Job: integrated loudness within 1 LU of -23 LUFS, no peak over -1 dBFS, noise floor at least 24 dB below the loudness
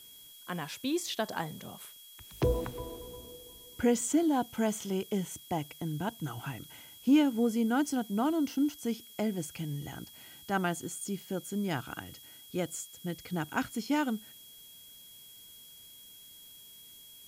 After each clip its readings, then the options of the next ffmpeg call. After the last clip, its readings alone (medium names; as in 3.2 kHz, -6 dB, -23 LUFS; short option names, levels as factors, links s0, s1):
steady tone 3.3 kHz; tone level -54 dBFS; noise floor -53 dBFS; noise floor target -57 dBFS; loudness -32.5 LUFS; peak level -15.5 dBFS; loudness target -23.0 LUFS
-> -af "bandreject=f=3300:w=30"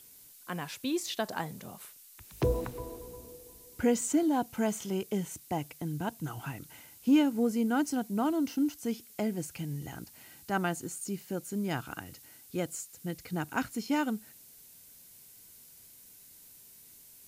steady tone not found; noise floor -55 dBFS; noise floor target -57 dBFS
-> -af "afftdn=nr=6:nf=-55"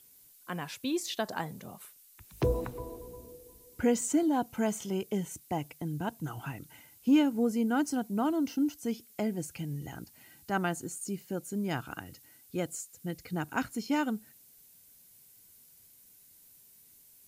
noise floor -59 dBFS; loudness -32.5 LUFS; peak level -15.5 dBFS; loudness target -23.0 LUFS
-> -af "volume=2.99"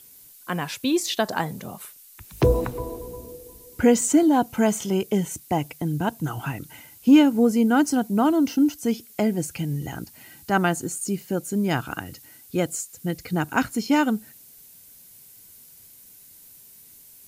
loudness -23.0 LUFS; peak level -6.0 dBFS; noise floor -49 dBFS